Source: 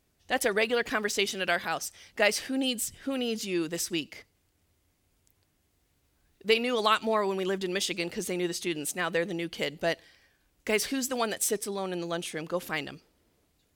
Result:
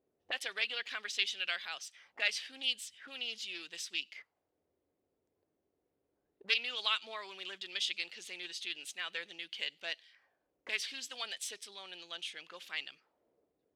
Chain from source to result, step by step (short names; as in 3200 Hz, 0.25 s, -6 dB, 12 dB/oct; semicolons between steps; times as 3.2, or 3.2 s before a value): auto-wah 440–3300 Hz, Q 2, up, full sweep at -32.5 dBFS; Doppler distortion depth 0.13 ms